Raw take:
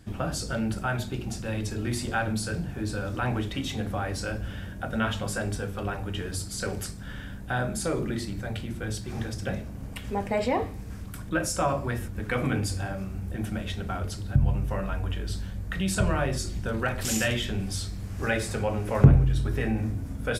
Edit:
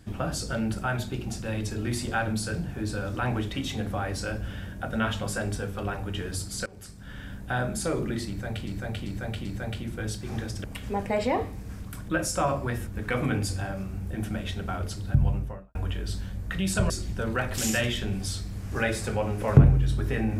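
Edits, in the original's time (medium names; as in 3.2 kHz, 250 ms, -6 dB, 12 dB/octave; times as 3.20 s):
6.66–7.34 s: fade in, from -23 dB
8.28–8.67 s: loop, 4 plays
9.47–9.85 s: delete
14.46–14.96 s: studio fade out
16.11–16.37 s: delete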